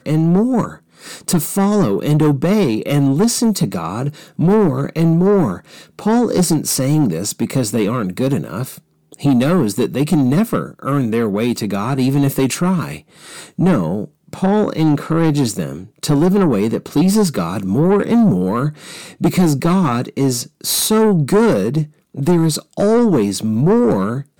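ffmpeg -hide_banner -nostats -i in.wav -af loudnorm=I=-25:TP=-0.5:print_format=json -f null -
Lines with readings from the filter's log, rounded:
"input_i" : "-16.1",
"input_tp" : "-7.9",
"input_lra" : "2.4",
"input_thresh" : "-26.4",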